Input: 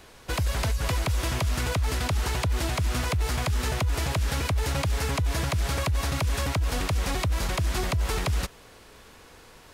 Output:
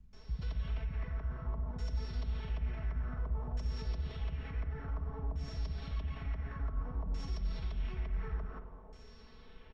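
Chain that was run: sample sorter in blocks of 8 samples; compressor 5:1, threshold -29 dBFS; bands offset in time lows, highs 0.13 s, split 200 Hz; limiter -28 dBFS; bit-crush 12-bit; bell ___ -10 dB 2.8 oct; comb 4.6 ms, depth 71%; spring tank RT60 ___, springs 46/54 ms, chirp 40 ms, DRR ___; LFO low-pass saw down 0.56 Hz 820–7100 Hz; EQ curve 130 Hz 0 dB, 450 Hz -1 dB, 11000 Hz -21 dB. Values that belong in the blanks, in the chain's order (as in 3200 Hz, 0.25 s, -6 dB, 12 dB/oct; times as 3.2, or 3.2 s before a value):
550 Hz, 2.4 s, 6.5 dB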